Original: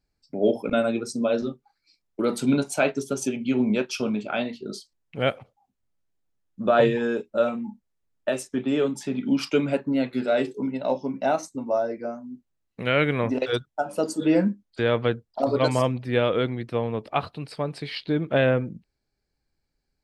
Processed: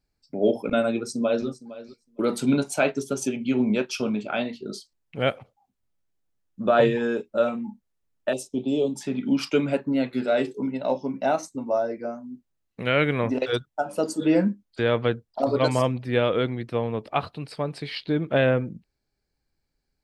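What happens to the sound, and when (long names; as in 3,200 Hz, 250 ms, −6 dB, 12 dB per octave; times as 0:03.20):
0:00.93–0:01.47: delay throw 460 ms, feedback 10%, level −16.5 dB
0:08.33–0:08.96: Chebyshev band-stop filter 740–3,400 Hz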